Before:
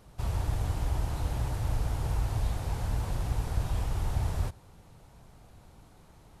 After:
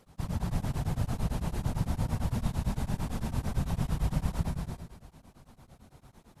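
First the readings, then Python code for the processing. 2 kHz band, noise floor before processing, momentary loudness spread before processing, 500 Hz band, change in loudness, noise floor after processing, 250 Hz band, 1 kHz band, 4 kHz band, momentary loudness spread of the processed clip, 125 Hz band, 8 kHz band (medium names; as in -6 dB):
-0.5 dB, -56 dBFS, 1 LU, -0.5 dB, -1.0 dB, -62 dBFS, +7.5 dB, -1.0 dB, -0.5 dB, 4 LU, -0.5 dB, -0.5 dB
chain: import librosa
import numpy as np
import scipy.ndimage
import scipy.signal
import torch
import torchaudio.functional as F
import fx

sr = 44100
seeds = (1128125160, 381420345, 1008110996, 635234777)

y = fx.whisperise(x, sr, seeds[0])
y = fx.echo_feedback(y, sr, ms=158, feedback_pct=45, wet_db=-10)
y = fx.rev_gated(y, sr, seeds[1], gate_ms=340, shape='rising', drr_db=3.0)
y = y * np.abs(np.cos(np.pi * 8.9 * np.arange(len(y)) / sr))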